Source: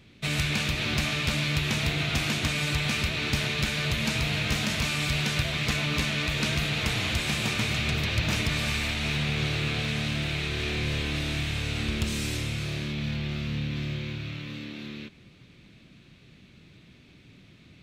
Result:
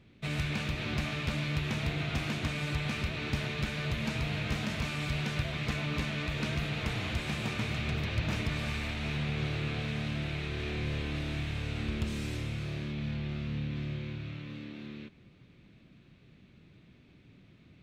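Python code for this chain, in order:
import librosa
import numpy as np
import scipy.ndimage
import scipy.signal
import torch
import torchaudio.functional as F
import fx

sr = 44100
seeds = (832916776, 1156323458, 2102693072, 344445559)

y = fx.high_shelf(x, sr, hz=2900.0, db=-11.0)
y = F.gain(torch.from_numpy(y), -4.0).numpy()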